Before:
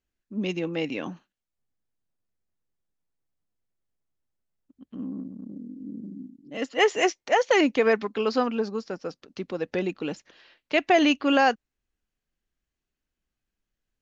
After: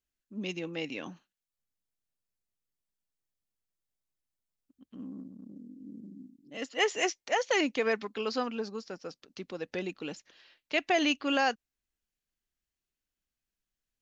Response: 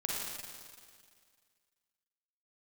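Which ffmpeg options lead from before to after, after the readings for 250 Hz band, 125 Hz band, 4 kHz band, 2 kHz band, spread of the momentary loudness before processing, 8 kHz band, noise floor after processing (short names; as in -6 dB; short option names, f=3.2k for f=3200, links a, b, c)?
-8.5 dB, -8.5 dB, -3.0 dB, -5.0 dB, 19 LU, n/a, under -85 dBFS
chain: -af "highshelf=f=2.4k:g=8.5,volume=-8.5dB"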